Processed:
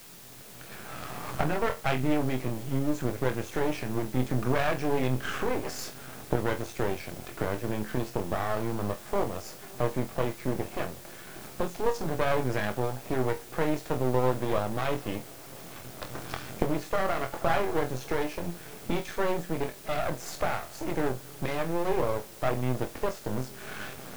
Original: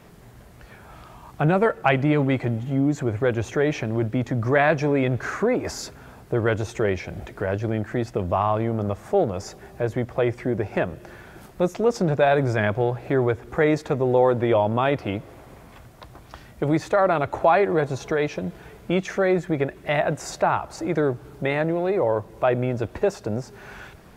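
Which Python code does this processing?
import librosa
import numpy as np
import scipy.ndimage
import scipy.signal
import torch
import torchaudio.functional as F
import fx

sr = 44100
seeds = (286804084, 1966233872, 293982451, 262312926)

p1 = fx.recorder_agc(x, sr, target_db=-11.5, rise_db_per_s=14.0, max_gain_db=30)
p2 = scipy.signal.sosfilt(scipy.signal.butter(4, 94.0, 'highpass', fs=sr, output='sos'), p1)
p3 = fx.notch_comb(p2, sr, f0_hz=950.0)
p4 = p3 + fx.room_flutter(p3, sr, wall_m=4.0, rt60_s=0.21, dry=0)
p5 = np.maximum(p4, 0.0)
p6 = fx.quant_dither(p5, sr, seeds[0], bits=6, dither='triangular')
p7 = p5 + (p6 * librosa.db_to_amplitude(-5.0))
y = p7 * librosa.db_to_amplitude(-8.5)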